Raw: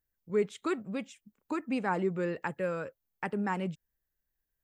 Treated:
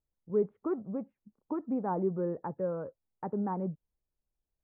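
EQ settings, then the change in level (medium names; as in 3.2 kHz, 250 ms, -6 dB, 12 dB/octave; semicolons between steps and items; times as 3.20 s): inverse Chebyshev low-pass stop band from 4.4 kHz, stop band 70 dB; 0.0 dB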